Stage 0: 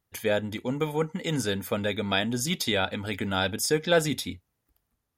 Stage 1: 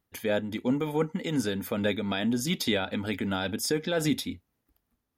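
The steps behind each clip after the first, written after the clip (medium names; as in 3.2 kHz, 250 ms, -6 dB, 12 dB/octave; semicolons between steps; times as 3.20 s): graphic EQ 125/250/8000 Hz -3/+6/-4 dB; peak limiter -17 dBFS, peak gain reduction 7 dB; random flutter of the level, depth 55%; trim +2 dB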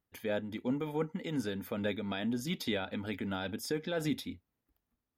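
peaking EQ 8.2 kHz -6 dB 1.5 oct; trim -6.5 dB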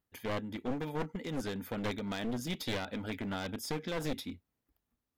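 one-sided wavefolder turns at -34.5 dBFS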